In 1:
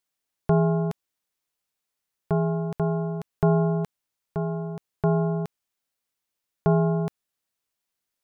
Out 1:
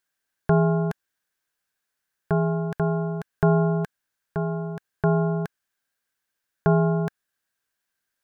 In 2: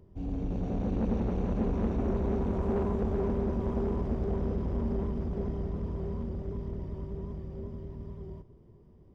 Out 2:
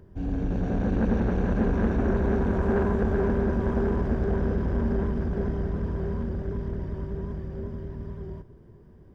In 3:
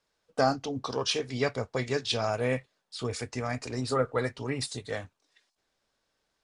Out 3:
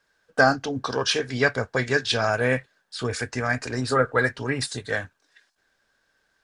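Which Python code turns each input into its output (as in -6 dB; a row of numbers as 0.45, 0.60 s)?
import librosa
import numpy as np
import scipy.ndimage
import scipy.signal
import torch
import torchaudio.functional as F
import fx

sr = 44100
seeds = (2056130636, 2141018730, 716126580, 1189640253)

y = fx.peak_eq(x, sr, hz=1600.0, db=14.0, octaves=0.3)
y = y * 10.0 ** (-26 / 20.0) / np.sqrt(np.mean(np.square(y)))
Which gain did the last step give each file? +1.0, +5.5, +5.0 dB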